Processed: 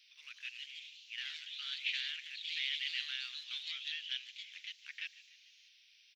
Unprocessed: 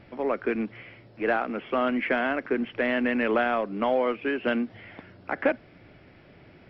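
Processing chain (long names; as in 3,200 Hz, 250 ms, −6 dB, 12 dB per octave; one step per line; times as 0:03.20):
inverse Chebyshev high-pass filter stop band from 700 Hz, stop band 70 dB
delay with pitch and tempo change per echo 221 ms, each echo +2 semitones, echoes 2
echo with shifted repeats 160 ms, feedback 59%, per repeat +59 Hz, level −18.5 dB
wrong playback speed 44.1 kHz file played as 48 kHz
level +5 dB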